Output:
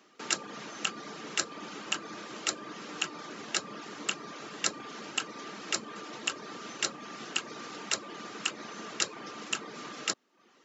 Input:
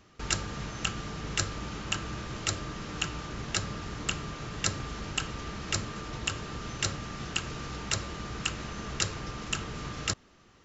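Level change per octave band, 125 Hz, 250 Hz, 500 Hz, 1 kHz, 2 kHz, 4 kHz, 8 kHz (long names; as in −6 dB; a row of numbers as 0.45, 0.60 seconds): −18.5 dB, −4.5 dB, −1.5 dB, −1.0 dB, −0.5 dB, −0.5 dB, can't be measured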